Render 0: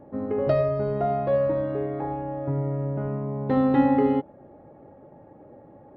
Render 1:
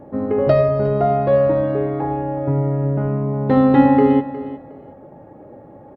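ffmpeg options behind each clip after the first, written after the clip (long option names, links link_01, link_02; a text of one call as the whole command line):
ffmpeg -i in.wav -af "aecho=1:1:361|722:0.178|0.0356,volume=7.5dB" out.wav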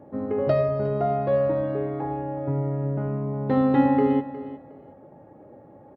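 ffmpeg -i in.wav -af "highpass=58,volume=-7dB" out.wav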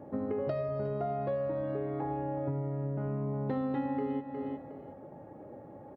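ffmpeg -i in.wav -af "acompressor=threshold=-31dB:ratio=6" out.wav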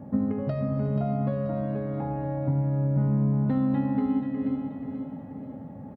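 ffmpeg -i in.wav -filter_complex "[0:a]lowshelf=frequency=280:width_type=q:width=3:gain=7,asplit=2[link_01][link_02];[link_02]aecho=0:1:483|966|1449|1932|2415:0.447|0.192|0.0826|0.0355|0.0153[link_03];[link_01][link_03]amix=inputs=2:normalize=0,volume=1.5dB" out.wav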